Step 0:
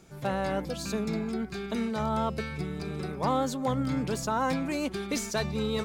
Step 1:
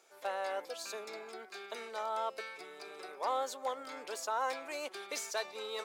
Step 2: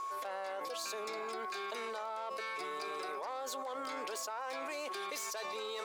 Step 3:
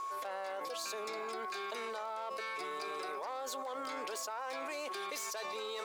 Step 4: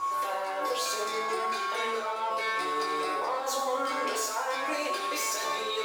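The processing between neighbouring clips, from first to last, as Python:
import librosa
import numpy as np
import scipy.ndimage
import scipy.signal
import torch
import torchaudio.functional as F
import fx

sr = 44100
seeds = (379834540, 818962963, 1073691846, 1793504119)

y1 = scipy.signal.sosfilt(scipy.signal.butter(4, 480.0, 'highpass', fs=sr, output='sos'), x)
y1 = y1 * 10.0 ** (-5.0 / 20.0)
y2 = fx.self_delay(y1, sr, depth_ms=0.066)
y2 = y2 + 10.0 ** (-48.0 / 20.0) * np.sin(2.0 * np.pi * 1100.0 * np.arange(len(y2)) / sr)
y2 = fx.env_flatten(y2, sr, amount_pct=100)
y2 = y2 * 10.0 ** (-8.5 / 20.0)
y3 = fx.dmg_crackle(y2, sr, seeds[0], per_s=350.0, level_db=-57.0)
y4 = fx.rev_fdn(y3, sr, rt60_s=1.0, lf_ratio=1.0, hf_ratio=0.85, size_ms=58.0, drr_db=-5.5)
y4 = y4 * 10.0 ** (3.5 / 20.0)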